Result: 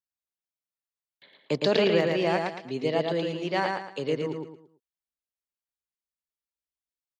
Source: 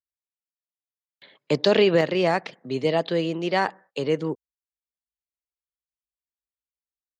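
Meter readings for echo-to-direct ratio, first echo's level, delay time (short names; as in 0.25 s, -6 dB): -3.0 dB, -3.5 dB, 0.112 s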